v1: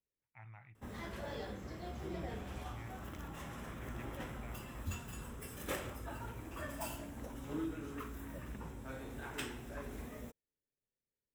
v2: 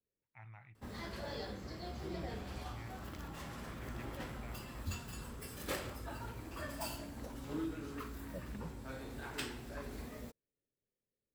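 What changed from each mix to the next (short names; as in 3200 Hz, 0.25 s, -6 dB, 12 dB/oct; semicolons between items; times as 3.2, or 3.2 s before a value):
second voice +5.5 dB; master: add bell 4500 Hz +13 dB 0.28 oct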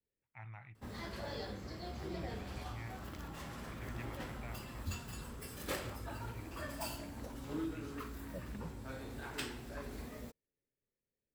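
first voice +4.0 dB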